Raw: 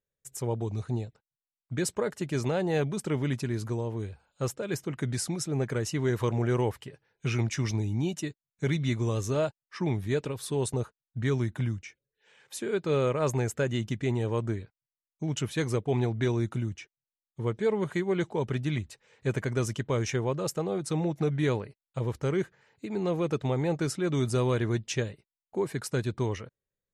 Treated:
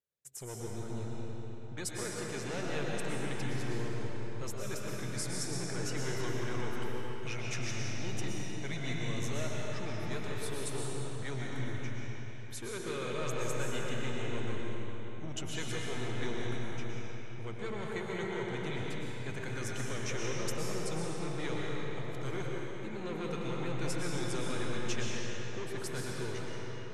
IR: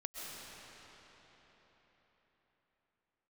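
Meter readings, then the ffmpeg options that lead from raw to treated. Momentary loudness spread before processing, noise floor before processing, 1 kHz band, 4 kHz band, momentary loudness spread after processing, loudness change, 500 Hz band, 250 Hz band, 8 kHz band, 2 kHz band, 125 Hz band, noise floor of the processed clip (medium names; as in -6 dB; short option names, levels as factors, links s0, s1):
9 LU, under -85 dBFS, -4.5 dB, -1.0 dB, 5 LU, -8.0 dB, -8.5 dB, -8.5 dB, -2.0 dB, -1.5 dB, -9.5 dB, -39 dBFS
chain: -filter_complex "[0:a]highpass=f=100:p=1,acrossover=split=1300[s0][s1];[s0]asoftclip=type=tanh:threshold=0.02[s2];[s2][s1]amix=inputs=2:normalize=0[s3];[1:a]atrim=start_sample=2205,asetrate=48510,aresample=44100[s4];[s3][s4]afir=irnorm=-1:irlink=0"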